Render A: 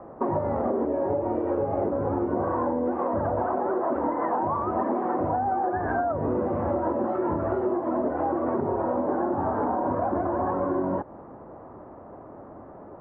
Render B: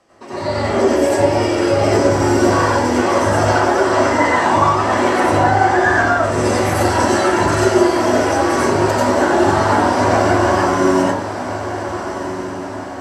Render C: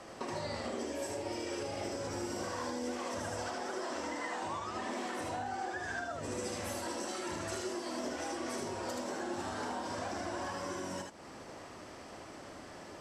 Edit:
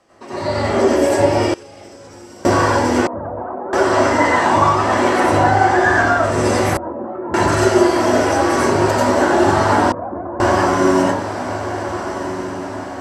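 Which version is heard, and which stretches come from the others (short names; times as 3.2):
B
1.54–2.45 from C
3.07–3.73 from A
6.77–7.34 from A
9.92–10.4 from A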